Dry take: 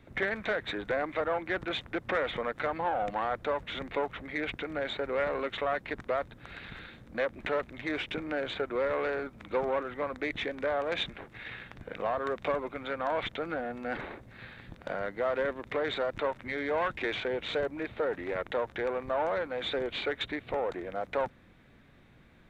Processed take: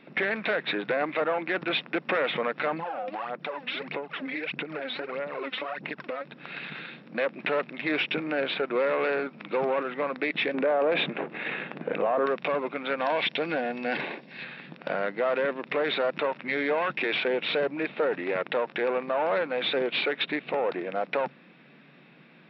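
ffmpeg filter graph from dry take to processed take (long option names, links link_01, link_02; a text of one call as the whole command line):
ffmpeg -i in.wav -filter_complex "[0:a]asettb=1/sr,asplit=3[link_01][link_02][link_03];[link_01]atrim=end=2.734[link_04];[link_02]atrim=start=2.73:end=6.25,asetpts=PTS-STARTPTS,afade=type=in:duration=0.004:curve=qsin,afade=type=out:start_time=3.516:duration=0.004:curve=qsin,aphaser=in_gain=1:out_gain=1:delay=4:decay=0.68:speed=1.6:type=sinusoidal,acompressor=threshold=-36dB:ratio=6:attack=3.2:release=140:knee=1:detection=peak[link_05];[link_03]atrim=start=6.246[link_06];[link_04][link_05]acrossfade=duration=0.004:curve1=hsin:curve2=qsin[link_07];[link_07][link_06]acrossfade=duration=0.004:curve1=qsin:curve2=hsin,asettb=1/sr,asplit=3[link_08][link_09][link_10];[link_08]atrim=end=10.544[link_11];[link_09]atrim=start=10.54:end=12.26,asetpts=PTS-STARTPTS,afade=type=in:duration=0.004:curve=qsin,afade=type=out:start_time=1.716:duration=0.004:curve=qsin,lowpass=4000,equalizer=frequency=440:width=0.41:gain=10[link_12];[link_10]atrim=start=12.256[link_13];[link_11][link_12]acrossfade=duration=0.004:curve1=hsin:curve2=qsin[link_14];[link_14][link_13]acrossfade=duration=0.004:curve1=qsin:curve2=hsin,asettb=1/sr,asplit=3[link_15][link_16][link_17];[link_15]atrim=end=12.984[link_18];[link_16]atrim=start=12.98:end=14.44,asetpts=PTS-STARTPTS,afade=type=in:duration=0.004:curve=qsin,afade=type=out:start_time=1.456:duration=0.004:curve=qsin,aemphasis=mode=production:type=75kf,bandreject=frequency=1300:width=5[link_19];[link_17]atrim=start=14.436[link_20];[link_18][link_19]acrossfade=duration=0.004:curve1=hsin:curve2=qsin[link_21];[link_21][link_20]acrossfade=duration=0.004:curve1=qsin:curve2=hsin,afftfilt=real='re*between(b*sr/4096,130,5600)':imag='im*between(b*sr/4096,130,5600)':win_size=4096:overlap=0.75,equalizer=frequency=2600:width_type=o:width=0.25:gain=8.5,alimiter=limit=-23dB:level=0:latency=1:release=12,volume=5.5dB" out.wav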